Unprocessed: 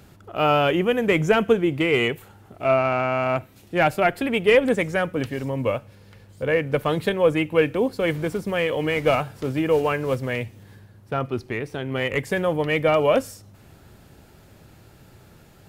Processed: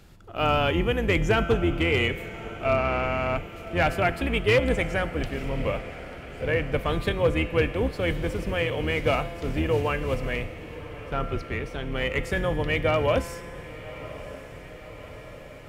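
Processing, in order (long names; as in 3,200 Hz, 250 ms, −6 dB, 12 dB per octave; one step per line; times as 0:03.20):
sub-octave generator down 2 octaves, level +3 dB
low-pass filter 3,500 Hz 6 dB per octave
high-shelf EQ 2,300 Hz +10 dB
tuned comb filter 170 Hz, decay 1.8 s, mix 70%
gain into a clipping stage and back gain 18 dB
on a send: feedback delay with all-pass diffusion 1,114 ms, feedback 66%, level −15.5 dB
on the sum: level +4.5 dB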